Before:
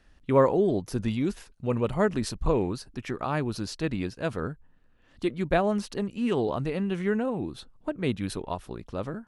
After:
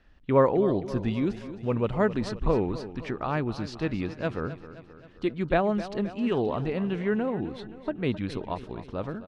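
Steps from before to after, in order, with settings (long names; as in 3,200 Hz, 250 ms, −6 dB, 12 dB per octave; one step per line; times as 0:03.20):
low-pass filter 4,000 Hz 12 dB per octave
on a send: repeating echo 263 ms, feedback 56%, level −14 dB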